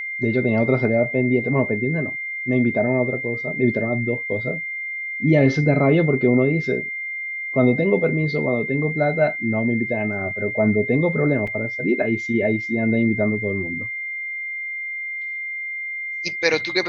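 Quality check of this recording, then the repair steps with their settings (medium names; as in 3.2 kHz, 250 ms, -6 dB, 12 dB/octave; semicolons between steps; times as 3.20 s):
whine 2.1 kHz -26 dBFS
11.47 s: dropout 4.5 ms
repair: band-stop 2.1 kHz, Q 30; interpolate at 11.47 s, 4.5 ms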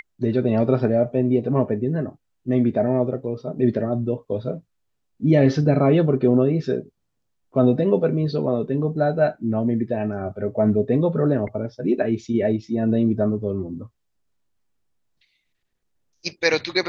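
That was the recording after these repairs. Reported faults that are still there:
nothing left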